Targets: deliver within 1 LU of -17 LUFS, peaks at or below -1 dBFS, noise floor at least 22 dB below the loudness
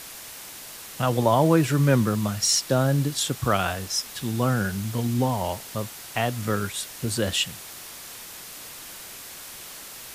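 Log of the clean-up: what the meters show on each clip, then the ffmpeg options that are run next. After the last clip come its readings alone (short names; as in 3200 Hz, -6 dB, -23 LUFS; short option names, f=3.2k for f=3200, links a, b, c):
noise floor -41 dBFS; noise floor target -46 dBFS; loudness -24.0 LUFS; peak -7.0 dBFS; loudness target -17.0 LUFS
-> -af "afftdn=nr=6:nf=-41"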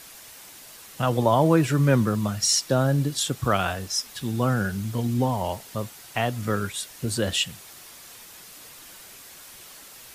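noise floor -46 dBFS; noise floor target -47 dBFS
-> -af "afftdn=nr=6:nf=-46"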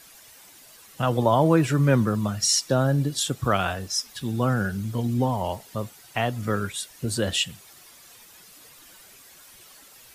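noise floor -50 dBFS; loudness -24.5 LUFS; peak -7.0 dBFS; loudness target -17.0 LUFS
-> -af "volume=7.5dB,alimiter=limit=-1dB:level=0:latency=1"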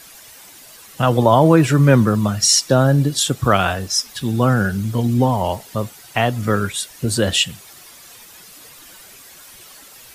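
loudness -17.0 LUFS; peak -1.0 dBFS; noise floor -43 dBFS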